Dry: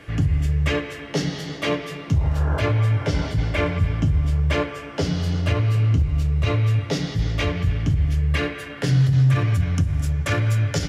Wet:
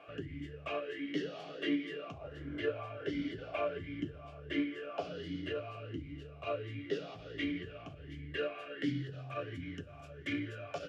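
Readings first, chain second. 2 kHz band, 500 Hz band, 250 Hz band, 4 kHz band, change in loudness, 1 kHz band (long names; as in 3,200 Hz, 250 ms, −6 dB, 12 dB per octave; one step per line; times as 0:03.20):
−13.5 dB, −10.5 dB, −11.5 dB, −14.5 dB, −18.0 dB, −13.0 dB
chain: in parallel at +1.5 dB: downward compressor, threshold −28 dBFS, peak gain reduction 13.5 dB
on the sum: formant filter swept between two vowels a-i 1.4 Hz
level −4 dB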